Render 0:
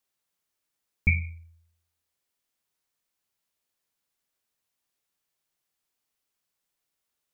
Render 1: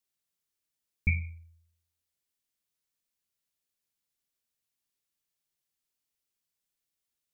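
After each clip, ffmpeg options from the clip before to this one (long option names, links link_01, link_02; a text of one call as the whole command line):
ffmpeg -i in.wav -af "equalizer=frequency=890:width=0.52:gain=-7,volume=-3dB" out.wav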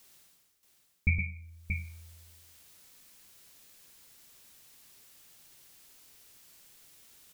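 ffmpeg -i in.wav -af "areverse,acompressor=mode=upward:threshold=-38dB:ratio=2.5,areverse,aecho=1:1:116|630:0.531|0.473" out.wav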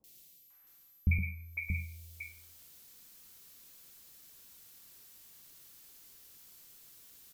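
ffmpeg -i in.wav -filter_complex "[0:a]aeval=exprs='val(0)+0.001*sin(2*PI*12000*n/s)':channel_layout=same,acrossover=split=700|2200[link_01][link_02][link_03];[link_03]adelay=40[link_04];[link_02]adelay=500[link_05];[link_01][link_05][link_04]amix=inputs=3:normalize=0" out.wav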